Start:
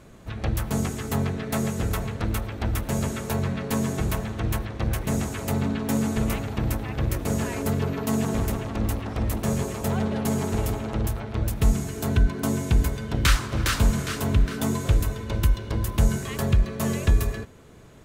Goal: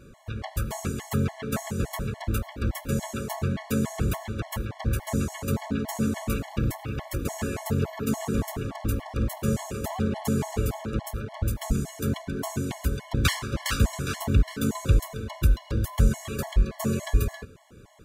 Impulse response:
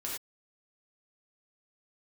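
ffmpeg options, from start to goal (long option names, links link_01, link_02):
-filter_complex "[0:a]asplit=2[link_01][link_02];[1:a]atrim=start_sample=2205,afade=type=out:start_time=0.28:duration=0.01,atrim=end_sample=12789[link_03];[link_02][link_03]afir=irnorm=-1:irlink=0,volume=-20.5dB[link_04];[link_01][link_04]amix=inputs=2:normalize=0,afftfilt=real='re*gt(sin(2*PI*3.5*pts/sr)*(1-2*mod(floor(b*sr/1024/570),2)),0)':imag='im*gt(sin(2*PI*3.5*pts/sr)*(1-2*mod(floor(b*sr/1024/570),2)),0)':win_size=1024:overlap=0.75"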